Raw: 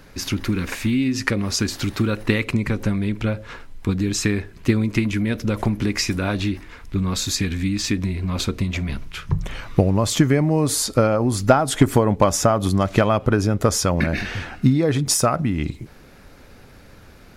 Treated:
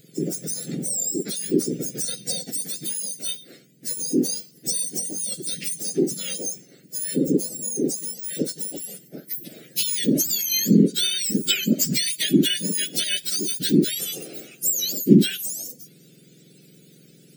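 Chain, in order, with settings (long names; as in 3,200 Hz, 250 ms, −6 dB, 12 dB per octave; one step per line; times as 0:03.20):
frequency axis turned over on the octave scale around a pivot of 1,400 Hz
Butterworth band-reject 1,000 Hz, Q 0.53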